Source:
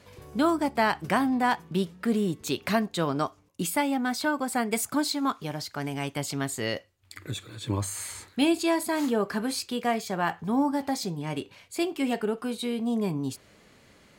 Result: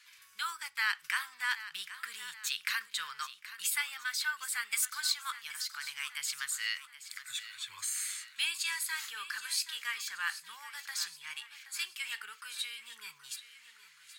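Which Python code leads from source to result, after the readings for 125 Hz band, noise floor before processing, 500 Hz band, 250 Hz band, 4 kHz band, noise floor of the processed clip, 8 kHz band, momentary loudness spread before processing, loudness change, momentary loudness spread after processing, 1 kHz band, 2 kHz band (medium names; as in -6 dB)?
under -40 dB, -59 dBFS, under -40 dB, under -40 dB, 0.0 dB, -60 dBFS, 0.0 dB, 10 LU, -7.0 dB, 12 LU, -14.5 dB, -1.0 dB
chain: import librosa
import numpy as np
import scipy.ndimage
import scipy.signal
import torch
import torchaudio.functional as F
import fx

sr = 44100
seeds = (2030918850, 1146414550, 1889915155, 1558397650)

y = scipy.signal.sosfilt(scipy.signal.cheby2(4, 40, 720.0, 'highpass', fs=sr, output='sos'), x)
y = fx.echo_feedback(y, sr, ms=775, feedback_pct=50, wet_db=-14.0)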